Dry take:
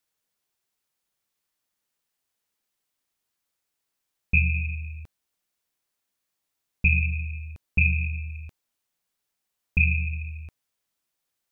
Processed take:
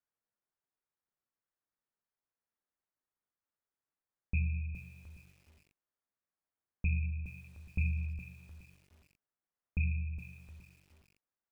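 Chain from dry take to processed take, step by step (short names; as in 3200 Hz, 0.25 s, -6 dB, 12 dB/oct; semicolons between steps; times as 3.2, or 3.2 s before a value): LPF 1800 Hz 24 dB/oct; de-hum 58.46 Hz, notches 18; lo-fi delay 0.416 s, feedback 35%, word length 8-bit, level -11 dB; gain -8.5 dB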